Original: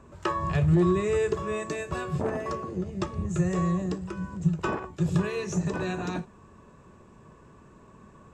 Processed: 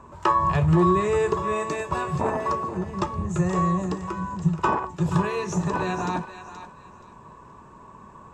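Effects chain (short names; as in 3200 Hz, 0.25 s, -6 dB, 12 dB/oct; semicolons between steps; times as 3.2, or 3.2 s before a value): bell 960 Hz +12.5 dB 0.56 oct; on a send: thinning echo 0.476 s, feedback 25%, high-pass 940 Hz, level -10 dB; on the sum: gain +2 dB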